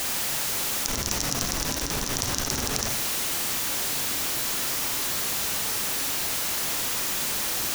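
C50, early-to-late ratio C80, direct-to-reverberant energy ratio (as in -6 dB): 6.0 dB, 9.5 dB, 4.5 dB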